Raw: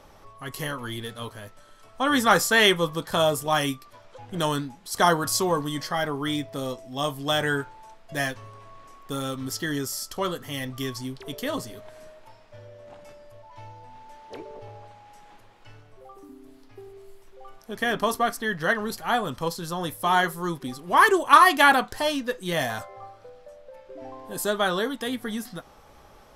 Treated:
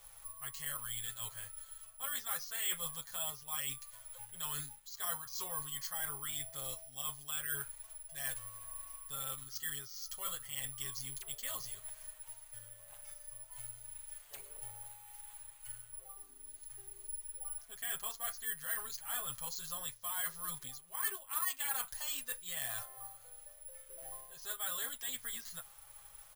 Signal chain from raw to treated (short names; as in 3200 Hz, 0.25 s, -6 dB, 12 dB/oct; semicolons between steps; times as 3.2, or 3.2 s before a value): passive tone stack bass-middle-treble 10-0-10; comb 7.4 ms, depth 90%; reverse; compressor 4:1, threshold -38 dBFS, peak gain reduction 19 dB; reverse; careless resampling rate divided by 4×, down filtered, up zero stuff; gain -5 dB